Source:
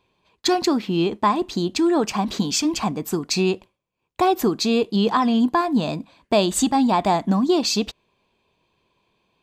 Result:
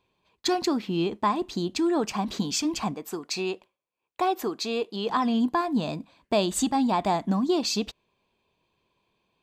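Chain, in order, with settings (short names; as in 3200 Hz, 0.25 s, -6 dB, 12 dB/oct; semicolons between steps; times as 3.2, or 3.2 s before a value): 2.94–5.1 tone controls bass -14 dB, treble -3 dB; gain -5.5 dB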